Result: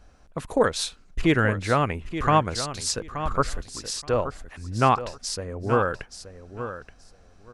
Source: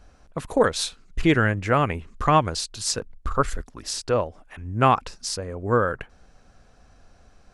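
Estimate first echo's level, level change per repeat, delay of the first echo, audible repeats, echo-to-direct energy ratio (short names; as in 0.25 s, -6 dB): -11.0 dB, -15.5 dB, 0.876 s, 2, -11.0 dB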